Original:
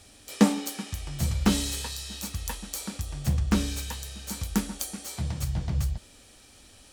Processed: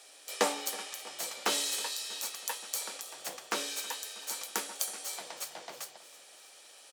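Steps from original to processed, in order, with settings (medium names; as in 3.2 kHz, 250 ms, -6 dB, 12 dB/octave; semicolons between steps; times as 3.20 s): high-pass 450 Hz 24 dB/octave; on a send: feedback delay 321 ms, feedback 56%, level -18.5 dB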